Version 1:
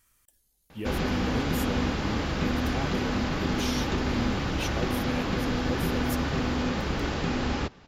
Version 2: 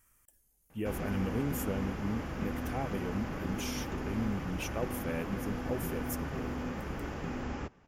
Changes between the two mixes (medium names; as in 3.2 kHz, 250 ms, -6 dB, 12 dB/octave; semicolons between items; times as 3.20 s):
background -9.0 dB; master: add peaking EQ 4 kHz -13.5 dB 0.71 oct